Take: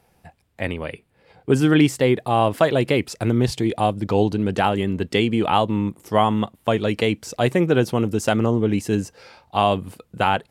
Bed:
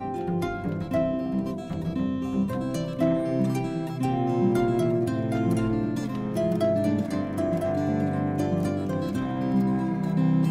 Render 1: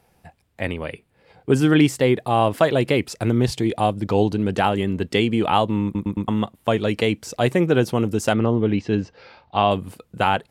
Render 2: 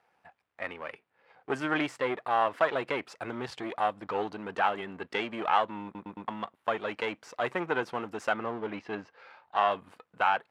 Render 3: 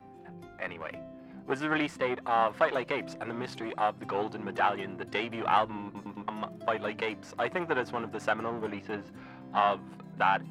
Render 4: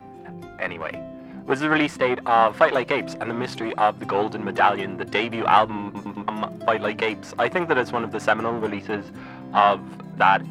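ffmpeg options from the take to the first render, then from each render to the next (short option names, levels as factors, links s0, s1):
-filter_complex "[0:a]asettb=1/sr,asplit=3[s0][s1][s2];[s0]atrim=end=8.334[s3];[s1]atrim=start=8.33:end=9.71,asetpts=PTS-STARTPTS,afade=t=in:d=0.004:c=qsin,afade=t=out:st=1.376:d=0.004:c=qsin,lowpass=f=4500:w=0.5412,lowpass=f=4500:w=1.3066[s4];[s2]atrim=start=9.706[s5];[s3][s4]acrossfade=d=0.004:c1=hsin:c2=qsin[s6];[s6][s5]acrossfade=d=0.004:c1=qsin:c2=hsin,asplit=5[s7][s8][s9][s10][s11];[s7]atrim=end=5.952[s12];[s8]atrim=start=5.838:end=5.952[s13];[s9]atrim=start=5.838:end=5.952[s14];[s10]atrim=start=5.838:end=5.952[s15];[s11]atrim=start=6.278[s16];[s12][s13]acrossfade=d=0.004:c1=hsin:c2=hsin[s17];[s17][s14]acrossfade=d=0.004:c1=hsin:c2=hsin[s18];[s18][s15]acrossfade=d=0.004:c1=hsin:c2=hsin[s19];[s19][s16]acrossfade=d=0.004:c1=hsin:c2=hsin"
-af "aeval=exprs='if(lt(val(0),0),0.447*val(0),val(0))':c=same,bandpass=f=1300:t=q:w=1.1:csg=0"
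-filter_complex "[1:a]volume=0.0944[s0];[0:a][s0]amix=inputs=2:normalize=0"
-af "volume=2.82"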